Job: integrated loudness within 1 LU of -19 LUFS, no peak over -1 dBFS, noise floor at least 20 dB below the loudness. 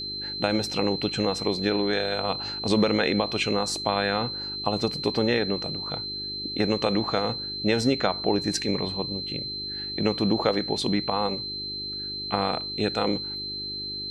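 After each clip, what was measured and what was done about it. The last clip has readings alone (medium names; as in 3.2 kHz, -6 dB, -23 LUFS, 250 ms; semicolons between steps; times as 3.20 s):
hum 50 Hz; highest harmonic 400 Hz; hum level -43 dBFS; steady tone 4.1 kHz; tone level -31 dBFS; loudness -26.0 LUFS; peak level -8.0 dBFS; loudness target -19.0 LUFS
-> de-hum 50 Hz, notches 8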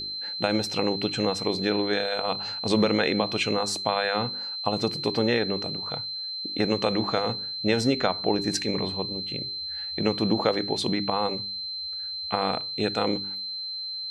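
hum not found; steady tone 4.1 kHz; tone level -31 dBFS
-> band-stop 4.1 kHz, Q 30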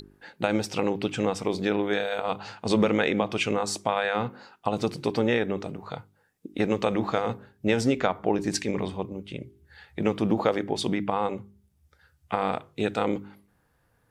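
steady tone not found; loudness -27.5 LUFS; peak level -8.0 dBFS; loudness target -19.0 LUFS
-> trim +8.5 dB; peak limiter -1 dBFS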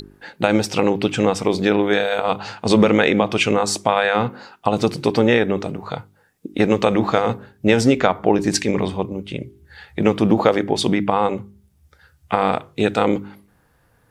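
loudness -19.0 LUFS; peak level -1.0 dBFS; noise floor -59 dBFS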